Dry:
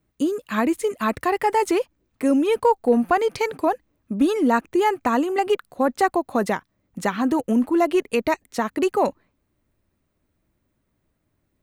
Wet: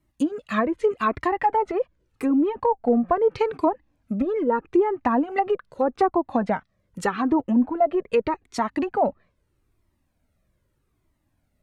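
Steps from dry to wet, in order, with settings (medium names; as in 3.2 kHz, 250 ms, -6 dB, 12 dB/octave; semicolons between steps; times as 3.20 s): low-pass that closes with the level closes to 890 Hz, closed at -15.5 dBFS; Shepard-style flanger falling 0.81 Hz; trim +4.5 dB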